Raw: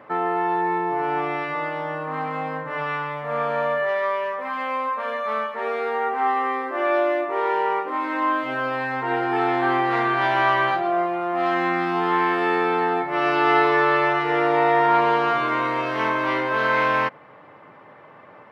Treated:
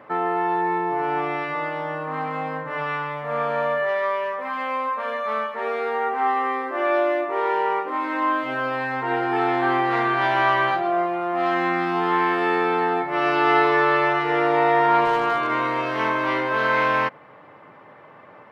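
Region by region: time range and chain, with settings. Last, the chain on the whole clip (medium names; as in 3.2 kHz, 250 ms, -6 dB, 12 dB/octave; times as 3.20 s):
15.05–15.50 s: low-pass 3.7 kHz 6 dB/octave + peaking EQ 84 Hz -5.5 dB 2 oct + hard clipper -15 dBFS
whole clip: none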